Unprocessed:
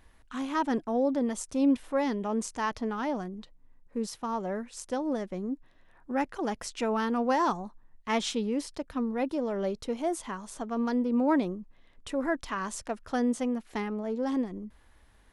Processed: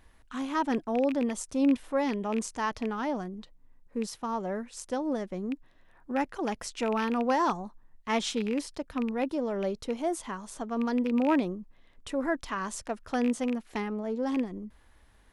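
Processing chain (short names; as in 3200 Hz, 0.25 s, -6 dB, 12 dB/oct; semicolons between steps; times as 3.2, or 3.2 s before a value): rattling part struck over -34 dBFS, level -27 dBFS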